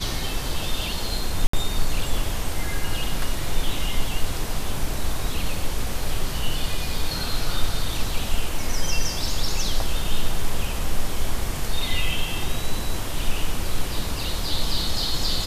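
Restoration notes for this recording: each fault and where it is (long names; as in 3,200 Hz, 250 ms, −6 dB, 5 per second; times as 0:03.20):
0:01.47–0:01.53: drop-out 64 ms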